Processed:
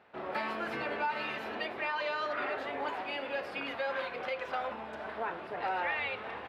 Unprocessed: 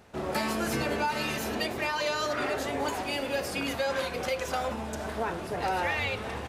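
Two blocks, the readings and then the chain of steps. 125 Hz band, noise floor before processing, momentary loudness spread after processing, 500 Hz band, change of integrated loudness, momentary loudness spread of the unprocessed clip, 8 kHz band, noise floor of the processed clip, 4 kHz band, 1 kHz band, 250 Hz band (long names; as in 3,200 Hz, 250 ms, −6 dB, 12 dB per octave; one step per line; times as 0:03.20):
−16.5 dB, −37 dBFS, 5 LU, −6.0 dB, −5.0 dB, 4 LU, below −25 dB, −44 dBFS, −8.0 dB, −3.5 dB, −10.5 dB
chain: high-pass filter 1,100 Hz 6 dB per octave
high-frequency loss of the air 430 metres
level +2.5 dB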